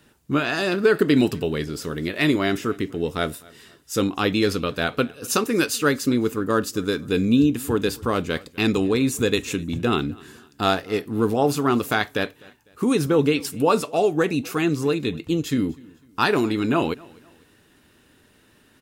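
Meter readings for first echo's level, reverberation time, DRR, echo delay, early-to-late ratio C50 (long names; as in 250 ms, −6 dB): −24.0 dB, no reverb audible, no reverb audible, 251 ms, no reverb audible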